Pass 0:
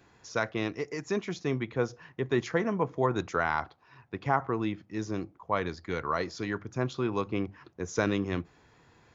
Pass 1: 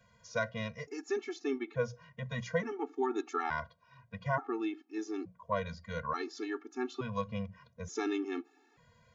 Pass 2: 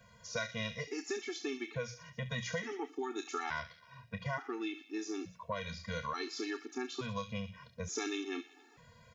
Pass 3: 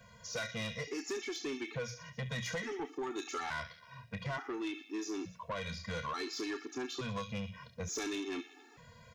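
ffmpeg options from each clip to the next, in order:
ffmpeg -i in.wav -af "bandreject=frequency=60:width_type=h:width=6,bandreject=frequency=120:width_type=h:width=6,bandreject=frequency=180:width_type=h:width=6,afftfilt=real='re*gt(sin(2*PI*0.57*pts/sr)*(1-2*mod(floor(b*sr/1024/230),2)),0)':imag='im*gt(sin(2*PI*0.57*pts/sr)*(1-2*mod(floor(b*sr/1024/230),2)),0)':win_size=1024:overlap=0.75,volume=-2dB" out.wav
ffmpeg -i in.wav -filter_complex "[0:a]acrossover=split=2300[link_01][link_02];[link_01]acompressor=threshold=-41dB:ratio=6[link_03];[link_02]aecho=1:1:30|69|119.7|185.6|271.3:0.631|0.398|0.251|0.158|0.1[link_04];[link_03][link_04]amix=inputs=2:normalize=0,volume=4.5dB" out.wav
ffmpeg -i in.wav -af "asoftclip=type=tanh:threshold=-35.5dB,volume=3dB" out.wav

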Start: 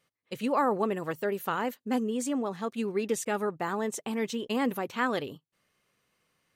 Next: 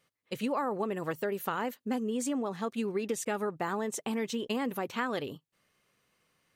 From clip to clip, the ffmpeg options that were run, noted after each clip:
ffmpeg -i in.wav -af "acompressor=threshold=-29dB:ratio=6,volume=1dB" out.wav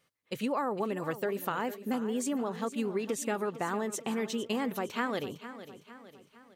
ffmpeg -i in.wav -af "aecho=1:1:457|914|1371|1828|2285:0.211|0.101|0.0487|0.0234|0.0112" out.wav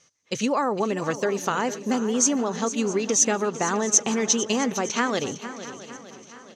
ffmpeg -i in.wav -af "lowpass=frequency=6200:width_type=q:width=11,aecho=1:1:665|1330|1995|2660:0.133|0.0627|0.0295|0.0138,volume=7.5dB" out.wav

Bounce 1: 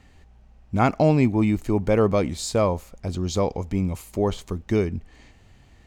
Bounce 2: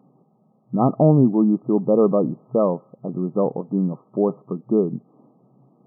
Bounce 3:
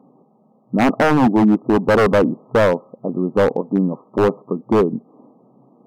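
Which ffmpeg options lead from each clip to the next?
ffmpeg -i in.wav -af "afftfilt=real='re*between(b*sr/4096,120,1300)':imag='im*between(b*sr/4096,120,1300)':win_size=4096:overlap=0.75,equalizer=frequency=1000:width=1.3:gain=-6.5,volume=4.5dB" out.wav
ffmpeg -i in.wav -af "equalizer=frequency=250:width_type=o:width=1:gain=10,equalizer=frequency=500:width_type=o:width=1:gain=9,equalizer=frequency=1000:width_type=o:width=1:gain=11,aeval=exprs='0.75*(abs(mod(val(0)/0.75+3,4)-2)-1)':channel_layout=same,volume=-5dB" out.wav

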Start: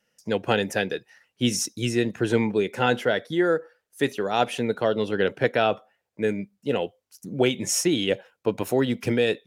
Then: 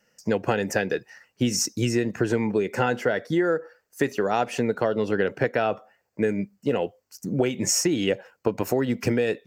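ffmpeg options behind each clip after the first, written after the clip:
ffmpeg -i in.wav -af "superequalizer=12b=0.708:13b=0.355:16b=0.398,acompressor=threshold=-26dB:ratio=6,volume=6.5dB" out.wav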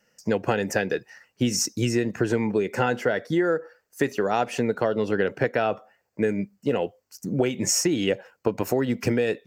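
ffmpeg -i in.wav -af anull out.wav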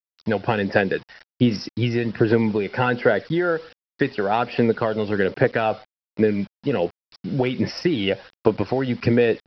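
ffmpeg -i in.wav -af "aresample=11025,acrusher=bits=7:mix=0:aa=0.000001,aresample=44100,aphaser=in_gain=1:out_gain=1:delay=1.4:decay=0.34:speed=1.3:type=sinusoidal,volume=2.5dB" out.wav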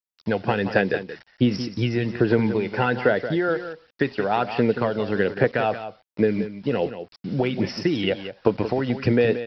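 ffmpeg -i in.wav -af "aecho=1:1:178:0.282,volume=-1.5dB" out.wav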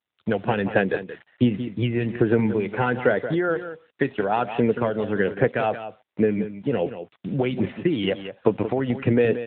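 ffmpeg -i in.wav -ar 8000 -c:a libopencore_amrnb -b:a 10200 out.amr

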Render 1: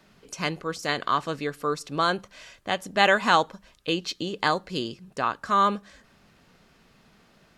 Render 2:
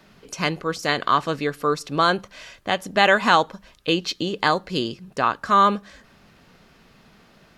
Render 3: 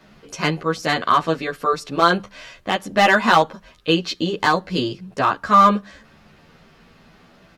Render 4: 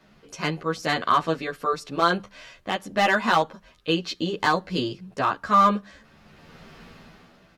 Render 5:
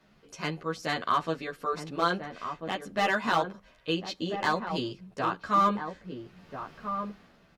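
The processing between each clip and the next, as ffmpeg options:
ffmpeg -i in.wav -filter_complex "[0:a]equalizer=frequency=8100:width=1.5:gain=-3.5,asplit=2[link_01][link_02];[link_02]alimiter=limit=-12dB:level=0:latency=1:release=261,volume=-1.5dB[link_03];[link_01][link_03]amix=inputs=2:normalize=0" out.wav
ffmpeg -i in.wav -filter_complex "[0:a]highshelf=frequency=5800:gain=-6.5,volume=9.5dB,asoftclip=hard,volume=-9.5dB,asplit=2[link_01][link_02];[link_02]adelay=11.1,afreqshift=0.34[link_03];[link_01][link_03]amix=inputs=2:normalize=1,volume=6dB" out.wav
ffmpeg -i in.wav -af "dynaudnorm=framelen=120:gausssize=13:maxgain=14dB,volume=-6.5dB" out.wav
ffmpeg -i in.wav -filter_complex "[0:a]asplit=2[link_01][link_02];[link_02]adelay=1341,volume=-7dB,highshelf=frequency=4000:gain=-30.2[link_03];[link_01][link_03]amix=inputs=2:normalize=0,volume=-6dB" out.wav

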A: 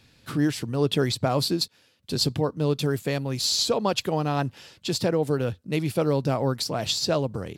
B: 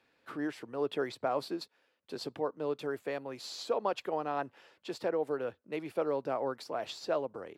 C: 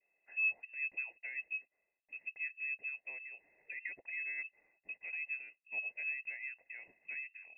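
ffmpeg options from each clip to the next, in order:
ffmpeg -i in.wav -filter_complex "[0:a]acrossover=split=320 2300:gain=0.0708 1 0.158[link_01][link_02][link_03];[link_01][link_02][link_03]amix=inputs=3:normalize=0,volume=-5.5dB" out.wav
ffmpeg -i in.wav -filter_complex "[0:a]adynamicequalizer=threshold=0.00224:dfrequency=1700:dqfactor=2.1:tfrequency=1700:tqfactor=2.1:attack=5:release=100:ratio=0.375:range=2:mode=cutabove:tftype=bell,asplit=3[link_01][link_02][link_03];[link_01]bandpass=frequency=300:width_type=q:width=8,volume=0dB[link_04];[link_02]bandpass=frequency=870:width_type=q:width=8,volume=-6dB[link_05];[link_03]bandpass=frequency=2240:width_type=q:width=8,volume=-9dB[link_06];[link_04][link_05][link_06]amix=inputs=3:normalize=0,lowpass=frequency=2500:width_type=q:width=0.5098,lowpass=frequency=2500:width_type=q:width=0.6013,lowpass=frequency=2500:width_type=q:width=0.9,lowpass=frequency=2500:width_type=q:width=2.563,afreqshift=-2900,volume=3.5dB" out.wav

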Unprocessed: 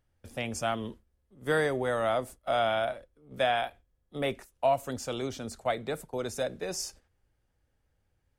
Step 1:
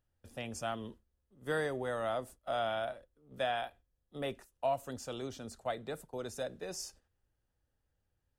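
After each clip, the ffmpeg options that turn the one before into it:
ffmpeg -i in.wav -af "bandreject=frequency=2200:width=9.6,volume=-7dB" out.wav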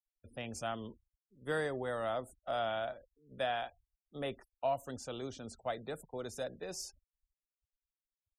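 ffmpeg -i in.wav -af "afftfilt=real='re*gte(hypot(re,im),0.00158)':imag='im*gte(hypot(re,im),0.00158)':win_size=1024:overlap=0.75,volume=-1dB" out.wav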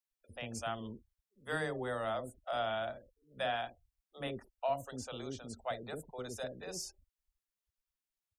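ffmpeg -i in.wav -filter_complex "[0:a]acrossover=split=480[link_01][link_02];[link_01]adelay=50[link_03];[link_03][link_02]amix=inputs=2:normalize=0,volume=1dB" out.wav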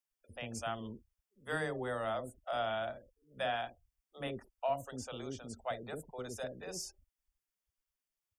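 ffmpeg -i in.wav -af "bandreject=frequency=4000:width=5.6" out.wav

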